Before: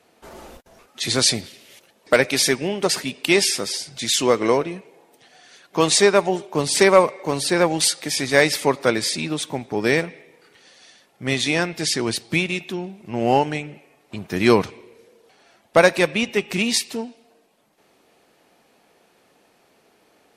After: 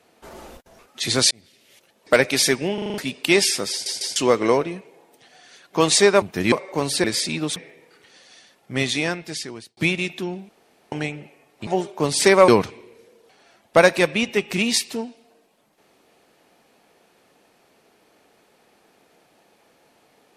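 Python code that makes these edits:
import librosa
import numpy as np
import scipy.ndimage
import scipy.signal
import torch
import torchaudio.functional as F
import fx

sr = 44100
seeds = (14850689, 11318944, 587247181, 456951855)

y = fx.edit(x, sr, fx.fade_in_span(start_s=1.31, length_s=0.84),
    fx.stutter_over(start_s=2.74, slice_s=0.04, count=6),
    fx.stutter_over(start_s=3.71, slice_s=0.15, count=3),
    fx.swap(start_s=6.22, length_s=0.81, other_s=14.18, other_length_s=0.3),
    fx.cut(start_s=7.55, length_s=1.38),
    fx.cut(start_s=9.45, length_s=0.62),
    fx.fade_out_span(start_s=11.27, length_s=1.01),
    fx.room_tone_fill(start_s=13.0, length_s=0.43), tone=tone)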